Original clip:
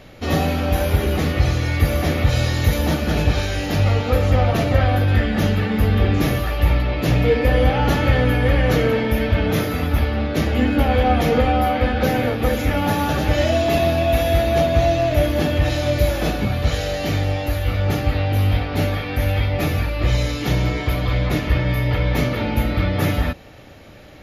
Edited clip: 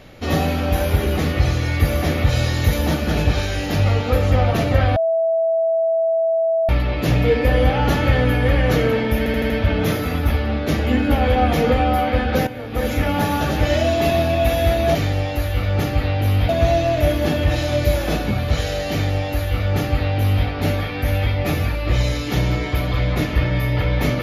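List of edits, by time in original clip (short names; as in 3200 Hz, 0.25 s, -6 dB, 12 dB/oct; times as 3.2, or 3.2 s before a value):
4.96–6.69 bleep 656 Hz -15 dBFS
9.18 stutter 0.08 s, 5 plays
12.15–12.56 fade in quadratic, from -13 dB
17.06–18.6 copy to 14.63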